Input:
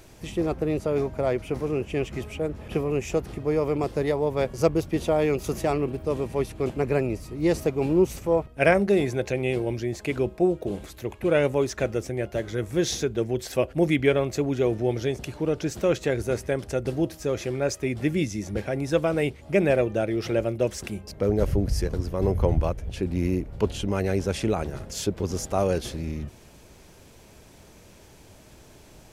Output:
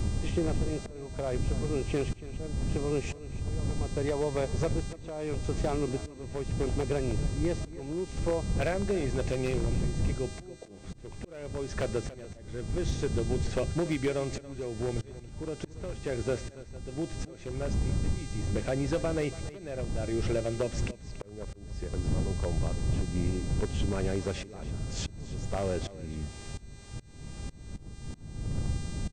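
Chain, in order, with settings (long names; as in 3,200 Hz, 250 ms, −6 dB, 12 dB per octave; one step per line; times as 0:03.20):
wind on the microphone 110 Hz −21 dBFS
Butterworth low-pass 8,000 Hz 72 dB per octave
high-shelf EQ 3,200 Hz −8.5 dB
downward compressor 20 to 1, threshold −26 dBFS, peak gain reduction 25.5 dB
wave folding −22 dBFS
hum with harmonics 400 Hz, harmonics 23, −50 dBFS −1 dB per octave
volume swells 582 ms
on a send: single-tap delay 283 ms −16.5 dB
on the sum: level +1.5 dB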